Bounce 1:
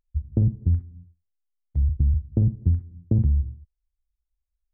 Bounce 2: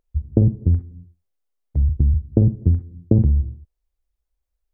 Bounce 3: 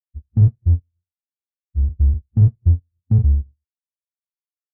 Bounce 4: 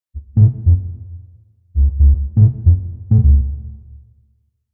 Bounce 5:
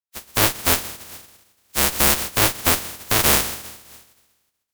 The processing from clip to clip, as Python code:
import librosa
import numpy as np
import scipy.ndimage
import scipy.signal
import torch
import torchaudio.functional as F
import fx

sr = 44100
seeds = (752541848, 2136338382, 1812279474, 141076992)

y1 = fx.peak_eq(x, sr, hz=470.0, db=9.5, octaves=2.0)
y1 = F.gain(torch.from_numpy(y1), 3.0).numpy()
y2 = fx.halfwave_hold(y1, sr)
y2 = fx.spectral_expand(y2, sr, expansion=2.5)
y2 = F.gain(torch.from_numpy(y2), -3.5).numpy()
y3 = fx.rev_plate(y2, sr, seeds[0], rt60_s=1.5, hf_ratio=0.95, predelay_ms=0, drr_db=9.0)
y3 = F.gain(torch.from_numpy(y3), 3.5).numpy()
y4 = fx.spec_flatten(y3, sr, power=0.1)
y4 = fx.tube_stage(y4, sr, drive_db=4.0, bias=0.75)
y4 = F.gain(torch.from_numpy(y4), -2.0).numpy()